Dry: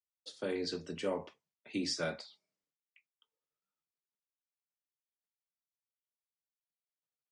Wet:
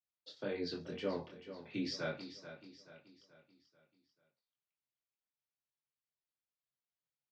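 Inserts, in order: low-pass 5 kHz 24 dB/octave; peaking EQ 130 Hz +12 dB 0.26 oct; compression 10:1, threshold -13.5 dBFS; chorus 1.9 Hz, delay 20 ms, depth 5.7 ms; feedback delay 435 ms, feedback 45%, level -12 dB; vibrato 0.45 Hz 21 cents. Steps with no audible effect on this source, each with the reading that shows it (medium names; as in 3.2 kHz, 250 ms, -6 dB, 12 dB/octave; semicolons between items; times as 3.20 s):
compression, threshold -13.5 dBFS: peak at its input -21.0 dBFS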